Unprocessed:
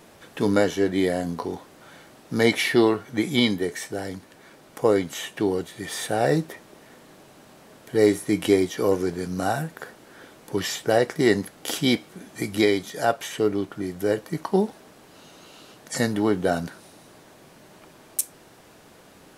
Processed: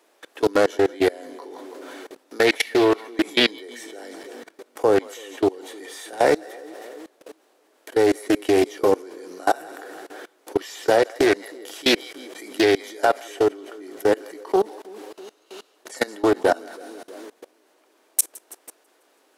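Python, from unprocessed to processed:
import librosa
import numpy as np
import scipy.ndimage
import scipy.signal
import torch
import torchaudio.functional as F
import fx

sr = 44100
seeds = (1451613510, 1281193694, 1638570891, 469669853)

y = scipy.signal.sosfilt(scipy.signal.butter(6, 300.0, 'highpass', fs=sr, output='sos'), x)
y = fx.echo_split(y, sr, split_hz=550.0, low_ms=324, high_ms=164, feedback_pct=52, wet_db=-13)
y = fx.quant_dither(y, sr, seeds[0], bits=12, dither='none')
y = fx.level_steps(y, sr, step_db=23)
y = fx.doppler_dist(y, sr, depth_ms=0.27)
y = y * librosa.db_to_amplitude(7.5)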